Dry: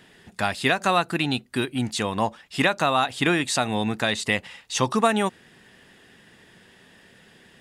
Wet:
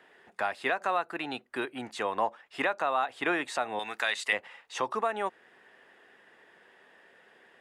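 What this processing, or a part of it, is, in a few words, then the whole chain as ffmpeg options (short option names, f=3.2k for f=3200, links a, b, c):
DJ mixer with the lows and highs turned down: -filter_complex "[0:a]acrossover=split=370 2200:gain=0.0708 1 0.178[a][b][c];[a][b][c]amix=inputs=3:normalize=0,alimiter=limit=-15.5dB:level=0:latency=1:release=432,asettb=1/sr,asplit=3[d][e][f];[d]atrim=end=3.794[g];[e]atrim=start=3.79:end=4.33,asetpts=PTS-STARTPTS,afade=t=in:d=0.004:c=qsin,afade=t=out:st=0.536:d=0.004:c=qsin,tiltshelf=f=1.1k:g=-10[h];[f]atrim=start=4.326[i];[g][h]acrossfade=d=0.004:c1=hsin:c2=qsin[j];[j][i]acrossfade=d=0.004:c1=qsin:c2=hsin,volume=-1dB"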